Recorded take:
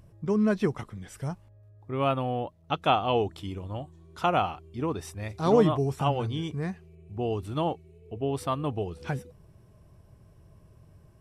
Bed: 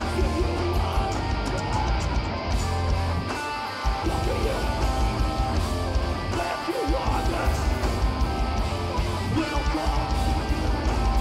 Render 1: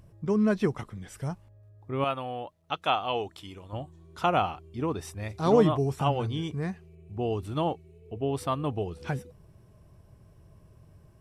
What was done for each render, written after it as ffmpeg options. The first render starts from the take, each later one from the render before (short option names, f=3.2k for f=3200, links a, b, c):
-filter_complex "[0:a]asettb=1/sr,asplit=3[a][b][c];[a]atrim=end=2.044[d];[b]atrim=start=2.04:end=3.73,asetpts=PTS-STARTPTS,afade=t=in:d=0.004:c=qsin,afade=t=out:st=1.686:d=0.004:c=qsin,lowshelf=f=490:g=-11[e];[c]atrim=start=3.726[f];[d][e]acrossfade=d=0.004:c1=hsin:c2=qsin[g];[g][f]acrossfade=d=0.004:c1=qsin:c2=hsin"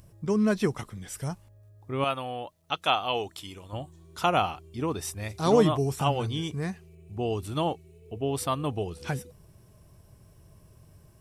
-af "highshelf=f=4k:g=11.5"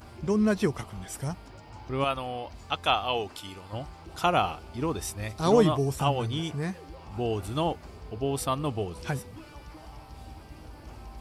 -filter_complex "[1:a]volume=-21.5dB[a];[0:a][a]amix=inputs=2:normalize=0"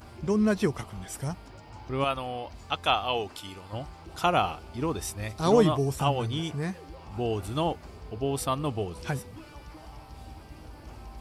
-af anull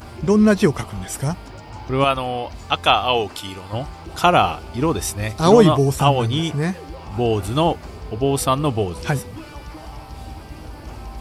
-af "volume=10dB,alimiter=limit=-1dB:level=0:latency=1"